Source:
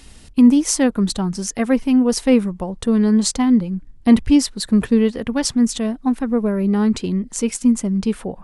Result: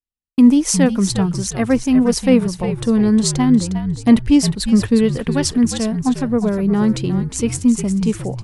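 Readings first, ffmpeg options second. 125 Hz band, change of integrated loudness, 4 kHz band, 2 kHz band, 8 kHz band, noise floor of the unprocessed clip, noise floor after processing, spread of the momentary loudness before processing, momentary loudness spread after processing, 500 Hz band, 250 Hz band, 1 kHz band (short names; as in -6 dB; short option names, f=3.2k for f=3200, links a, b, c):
+6.0 dB, +1.5 dB, +1.5 dB, +1.5 dB, +1.5 dB, -43 dBFS, -38 dBFS, 9 LU, 7 LU, +1.5 dB, +1.5 dB, +1.5 dB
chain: -filter_complex "[0:a]asplit=5[a][b][c][d][e];[b]adelay=358,afreqshift=-64,volume=-9dB[f];[c]adelay=716,afreqshift=-128,volume=-18.9dB[g];[d]adelay=1074,afreqshift=-192,volume=-28.8dB[h];[e]adelay=1432,afreqshift=-256,volume=-38.7dB[i];[a][f][g][h][i]amix=inputs=5:normalize=0,agate=range=-55dB:threshold=-32dB:ratio=16:detection=peak,volume=1dB"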